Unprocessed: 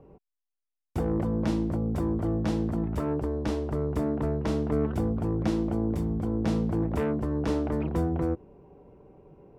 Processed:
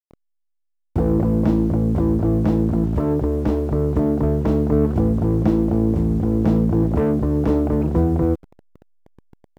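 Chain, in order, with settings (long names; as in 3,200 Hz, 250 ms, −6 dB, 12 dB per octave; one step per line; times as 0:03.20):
hold until the input has moved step −43 dBFS
tilt shelving filter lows +7.5 dB, about 1,500 Hz
level +2.5 dB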